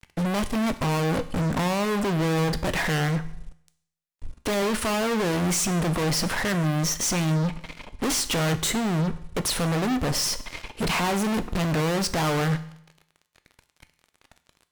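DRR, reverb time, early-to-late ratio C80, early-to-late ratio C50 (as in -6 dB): 10.5 dB, 0.70 s, 18.0 dB, 15.0 dB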